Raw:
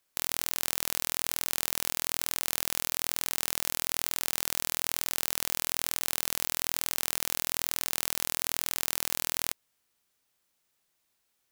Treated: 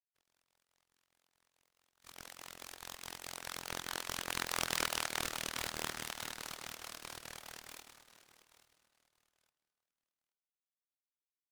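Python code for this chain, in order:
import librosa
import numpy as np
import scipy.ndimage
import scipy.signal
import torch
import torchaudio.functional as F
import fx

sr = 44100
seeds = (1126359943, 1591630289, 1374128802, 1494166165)

p1 = fx.doppler_pass(x, sr, speed_mps=19, closest_m=6.5, pass_at_s=4.73)
p2 = scipy.signal.sosfilt(scipy.signal.butter(2, 630.0, 'highpass', fs=sr, output='sos'), p1)
p3 = fx.noise_reduce_blind(p2, sr, reduce_db=25)
p4 = scipy.signal.sosfilt(scipy.signal.butter(4, 7100.0, 'lowpass', fs=sr, output='sos'), p3)
p5 = fx.dynamic_eq(p4, sr, hz=1600.0, q=0.78, threshold_db=-55.0, ratio=4.0, max_db=6)
p6 = fx.rider(p5, sr, range_db=4, speed_s=0.5)
p7 = p5 + F.gain(torch.from_numpy(p6), 0.0).numpy()
p8 = fx.pitch_keep_formants(p7, sr, semitones=-1.0)
p9 = fx.volume_shaper(p8, sr, bpm=142, per_beat=2, depth_db=-7, release_ms=63.0, shape='slow start')
p10 = p9 + 10.0 ** (-16.0 / 20.0) * np.pad(p9, (int(828 * sr / 1000.0), 0))[:len(p9)]
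p11 = fx.rev_fdn(p10, sr, rt60_s=3.5, lf_ratio=1.0, hf_ratio=0.8, size_ms=24.0, drr_db=16.0)
p12 = fx.noise_mod_delay(p11, sr, seeds[0], noise_hz=1500.0, depth_ms=0.094)
y = F.gain(torch.from_numpy(p12), -2.0).numpy()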